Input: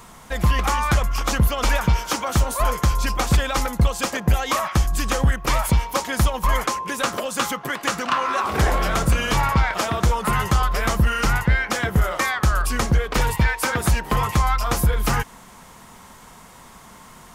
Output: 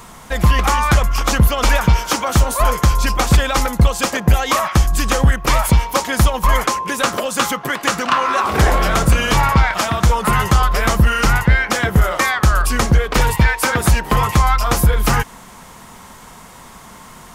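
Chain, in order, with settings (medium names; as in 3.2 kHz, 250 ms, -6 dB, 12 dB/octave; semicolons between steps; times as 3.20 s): 9.67–10.10 s: peaking EQ 430 Hz -7 dB; trim +5.5 dB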